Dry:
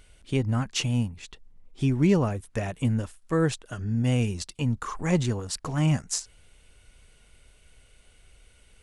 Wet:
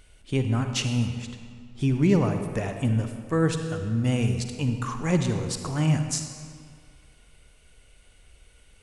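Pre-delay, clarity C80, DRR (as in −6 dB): 39 ms, 7.5 dB, 6.0 dB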